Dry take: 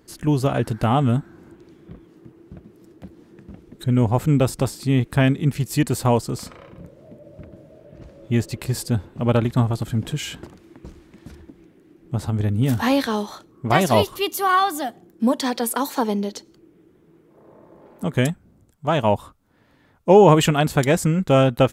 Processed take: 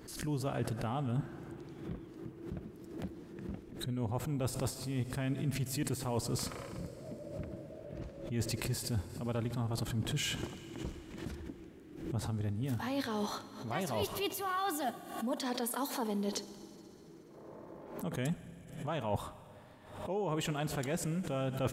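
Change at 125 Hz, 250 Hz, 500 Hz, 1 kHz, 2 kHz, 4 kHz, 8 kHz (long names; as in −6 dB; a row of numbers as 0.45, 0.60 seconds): −15.0, −15.5, −17.5, −17.0, −15.0, −11.5, −9.5 decibels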